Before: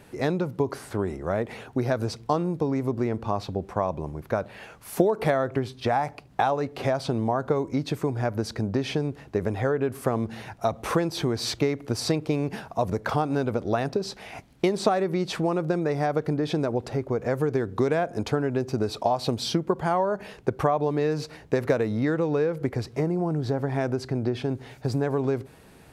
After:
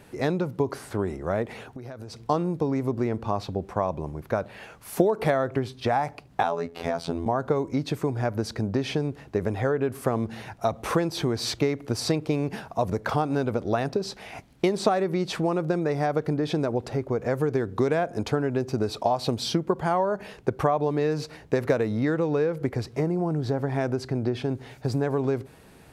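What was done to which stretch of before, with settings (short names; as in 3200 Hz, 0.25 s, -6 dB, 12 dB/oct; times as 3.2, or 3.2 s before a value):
1.45–2.2 compressor 10:1, threshold -35 dBFS
6.43–7.26 robotiser 84.4 Hz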